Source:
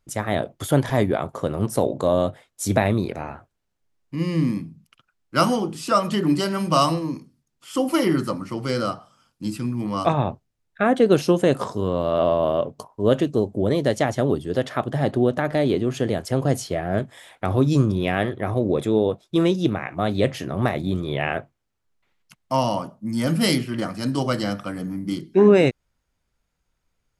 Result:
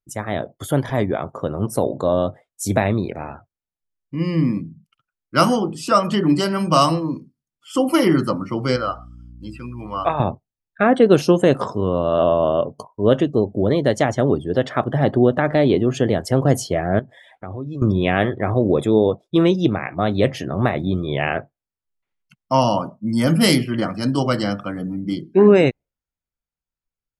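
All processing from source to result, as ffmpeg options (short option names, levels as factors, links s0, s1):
-filter_complex "[0:a]asettb=1/sr,asplit=3[s0][s1][s2];[s0]atrim=end=8.764[s3];[s1]atrim=start=8.76:end=10.2,asetpts=PTS-STARTPTS,afade=t=in:d=0.004:c=qsin,afade=t=out:st=1.436:d=0.004:c=qsin,acrossover=split=3000[s4][s5];[s5]acompressor=threshold=0.00447:ratio=4:attack=1:release=60[s6];[s4][s6]amix=inputs=2:normalize=0,equalizer=f=190:w=0.61:g=-14.5,aeval=exprs='val(0)+0.00631*(sin(2*PI*60*n/s)+sin(2*PI*2*60*n/s)/2+sin(2*PI*3*60*n/s)/3+sin(2*PI*4*60*n/s)/4+sin(2*PI*5*60*n/s)/5)':c=same[s7];[s2]atrim=start=10.196[s8];[s3][s7]acrossfade=d=0.004:c1=hsin:c2=qsin[s9];[s9][s8]acrossfade=d=0.004:c1=qsin:c2=hsin,asettb=1/sr,asplit=3[s10][s11][s12];[s10]atrim=end=16.994[s13];[s11]atrim=start=16.99:end=17.82,asetpts=PTS-STARTPTS,afade=t=in:d=0.004:c=qsin,afade=t=out:st=0.826:d=0.004:c=qsin,highshelf=f=8300:g=-8.5,acompressor=threshold=0.00708:ratio=2:attack=3.2:release=140:knee=1:detection=peak[s14];[s12]atrim=start=17.816[s15];[s13][s14]acrossfade=d=0.004:c1=hsin:c2=qsin[s16];[s16][s15]acrossfade=d=0.004:c1=qsin:c2=hsin,afftdn=nr=18:nf=-44,equalizer=f=3900:t=o:w=0.2:g=-2.5,dynaudnorm=f=130:g=21:m=3.76,volume=0.891"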